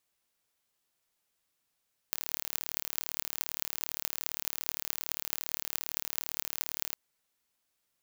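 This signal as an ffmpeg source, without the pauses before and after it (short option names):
-f lavfi -i "aevalsrc='0.75*eq(mod(n,1176),0)*(0.5+0.5*eq(mod(n,9408),0))':d=4.82:s=44100"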